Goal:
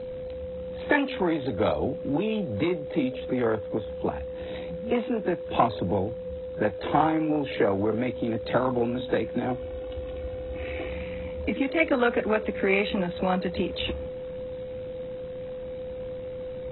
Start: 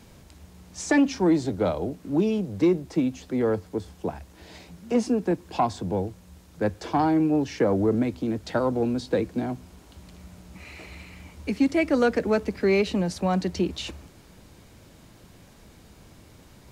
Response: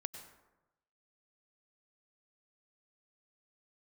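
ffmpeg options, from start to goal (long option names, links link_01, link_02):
-filter_complex "[0:a]asettb=1/sr,asplit=3[link_01][link_02][link_03];[link_01]atrim=end=9.474[link_04];[link_02]atrim=start=9.47:end=10.89,asetpts=PTS-STARTPTS,afade=type=in:duration=0.004:curve=qsin,afade=type=out:start_time=1.416:duration=0.004:curve=qsin,aecho=1:1:2.7:0.76,atrim=end_sample=62622[link_05];[link_03]atrim=start=10.886[link_06];[link_04][link_05]acrossfade=duration=0.004:curve1=hsin:curve2=qsin[link_07];[link_07][link_06]acrossfade=duration=0.004:curve1=qsin:curve2=hsin,acrossover=split=680|890[link_08][link_09][link_10];[link_08]acompressor=threshold=-33dB:ratio=6[link_11];[link_10]aeval=exprs='val(0)*sin(2*PI*37*n/s)':channel_layout=same[link_12];[link_11][link_09][link_12]amix=inputs=3:normalize=0,aeval=exprs='val(0)+0.0112*sin(2*PI*510*n/s)':channel_layout=same,volume=6dB" -ar 24000 -c:a aac -b:a 16k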